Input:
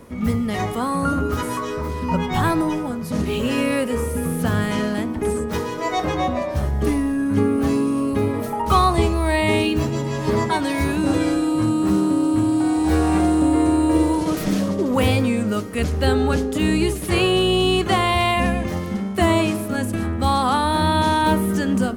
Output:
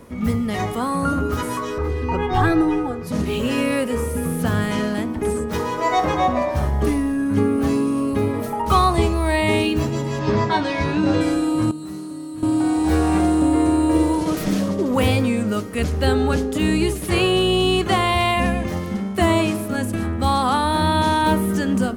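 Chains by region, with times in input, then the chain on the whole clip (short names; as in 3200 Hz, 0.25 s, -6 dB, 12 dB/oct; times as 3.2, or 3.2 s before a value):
1.78–3.07 LPF 2400 Hz 6 dB/oct + comb 2.5 ms, depth 98%
5.59–6.86 bell 940 Hz +4.5 dB 1.7 oct + flutter echo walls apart 9.7 m, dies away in 0.31 s
10.19–11.21 LPF 6000 Hz 24 dB/oct + doubler 20 ms -5 dB
11.71–12.43 high shelf 4800 Hz +7 dB + resonator 150 Hz, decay 0.54 s, mix 90%
whole clip: dry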